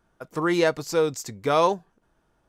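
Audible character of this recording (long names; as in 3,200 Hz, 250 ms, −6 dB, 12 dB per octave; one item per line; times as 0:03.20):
background noise floor −69 dBFS
spectral slope −4.5 dB per octave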